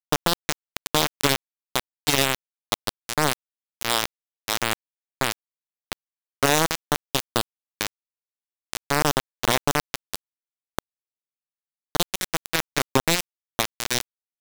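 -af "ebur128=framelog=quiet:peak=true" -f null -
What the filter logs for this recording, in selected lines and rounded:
Integrated loudness:
  I:         -25.2 LUFS
  Threshold: -35.7 LUFS
Loudness range:
  LRA:         3.9 LU
  Threshold: -46.7 LUFS
  LRA low:   -28.8 LUFS
  LRA high:  -24.8 LUFS
True peak:
  Peak:       -5.0 dBFS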